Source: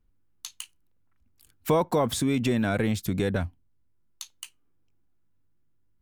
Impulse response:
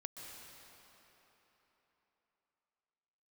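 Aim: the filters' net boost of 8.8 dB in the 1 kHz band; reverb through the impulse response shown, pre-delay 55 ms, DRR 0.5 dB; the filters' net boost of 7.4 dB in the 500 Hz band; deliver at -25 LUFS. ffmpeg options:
-filter_complex "[0:a]equalizer=f=500:t=o:g=6.5,equalizer=f=1000:t=o:g=8.5,asplit=2[s0][s1];[1:a]atrim=start_sample=2205,adelay=55[s2];[s1][s2]afir=irnorm=-1:irlink=0,volume=1.26[s3];[s0][s3]amix=inputs=2:normalize=0,volume=0.531"

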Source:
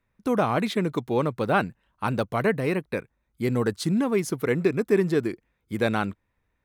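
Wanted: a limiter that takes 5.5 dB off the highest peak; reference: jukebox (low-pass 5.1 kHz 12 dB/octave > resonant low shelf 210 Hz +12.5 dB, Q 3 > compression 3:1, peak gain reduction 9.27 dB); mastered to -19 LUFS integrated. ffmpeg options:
-af "alimiter=limit=0.188:level=0:latency=1,lowpass=5100,lowshelf=f=210:t=q:w=3:g=12.5,acompressor=threshold=0.112:ratio=3,volume=1.58"

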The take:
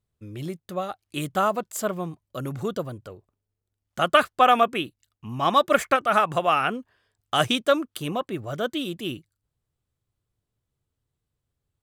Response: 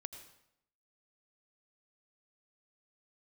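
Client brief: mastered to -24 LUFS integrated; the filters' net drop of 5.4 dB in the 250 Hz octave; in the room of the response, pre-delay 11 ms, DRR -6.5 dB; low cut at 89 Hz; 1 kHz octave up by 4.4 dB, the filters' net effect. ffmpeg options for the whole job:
-filter_complex "[0:a]highpass=89,equalizer=f=250:t=o:g=-7.5,equalizer=f=1000:t=o:g=6.5,asplit=2[s0][s1];[1:a]atrim=start_sample=2205,adelay=11[s2];[s1][s2]afir=irnorm=-1:irlink=0,volume=3.16[s3];[s0][s3]amix=inputs=2:normalize=0,volume=0.299"

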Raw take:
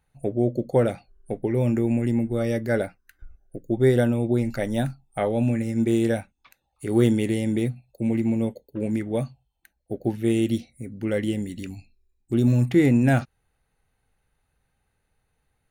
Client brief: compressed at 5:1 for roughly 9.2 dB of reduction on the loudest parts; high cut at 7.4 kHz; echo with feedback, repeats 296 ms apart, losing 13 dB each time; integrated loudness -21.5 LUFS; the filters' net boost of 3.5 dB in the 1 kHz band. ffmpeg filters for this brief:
-af "lowpass=7400,equalizer=f=1000:t=o:g=5.5,acompressor=threshold=0.0631:ratio=5,aecho=1:1:296|592|888:0.224|0.0493|0.0108,volume=2.51"

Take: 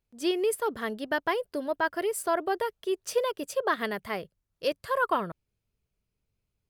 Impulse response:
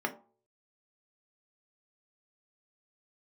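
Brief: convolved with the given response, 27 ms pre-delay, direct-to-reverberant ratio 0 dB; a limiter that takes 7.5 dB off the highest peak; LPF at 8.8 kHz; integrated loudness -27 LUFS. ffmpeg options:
-filter_complex "[0:a]lowpass=8800,alimiter=limit=0.0944:level=0:latency=1,asplit=2[s0][s1];[1:a]atrim=start_sample=2205,adelay=27[s2];[s1][s2]afir=irnorm=-1:irlink=0,volume=0.473[s3];[s0][s3]amix=inputs=2:normalize=0,volume=1.12"

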